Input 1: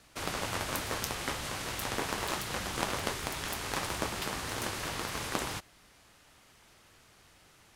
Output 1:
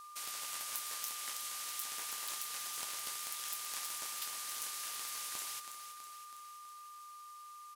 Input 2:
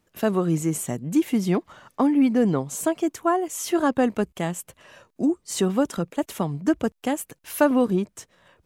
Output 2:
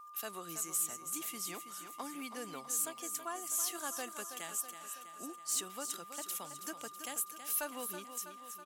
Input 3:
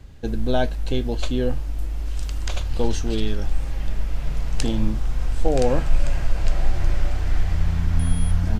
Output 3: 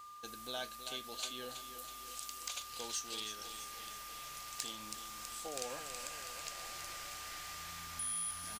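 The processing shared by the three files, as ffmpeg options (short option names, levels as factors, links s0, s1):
-filter_complex "[0:a]aderivative,asplit=2[s0][s1];[s1]acompressor=threshold=0.00355:ratio=6,volume=0.891[s2];[s0][s2]amix=inputs=2:normalize=0,aecho=1:1:325|650|975|1300|1625|1950|2275:0.316|0.183|0.106|0.0617|0.0358|0.0208|0.012,asoftclip=type=tanh:threshold=0.0708,aeval=exprs='val(0)+0.00447*sin(2*PI*1200*n/s)':c=same,volume=0.75"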